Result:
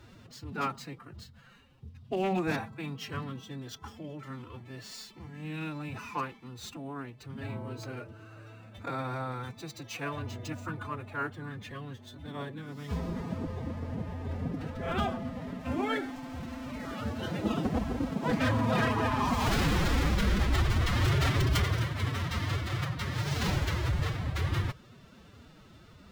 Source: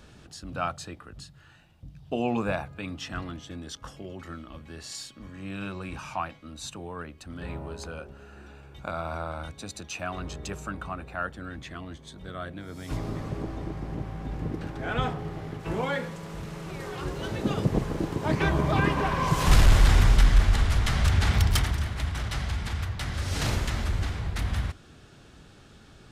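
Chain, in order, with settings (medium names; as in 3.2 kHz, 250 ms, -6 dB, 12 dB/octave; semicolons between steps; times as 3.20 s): median filter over 5 samples; wavefolder -18.5 dBFS; formant-preserving pitch shift +8 st; trim -1.5 dB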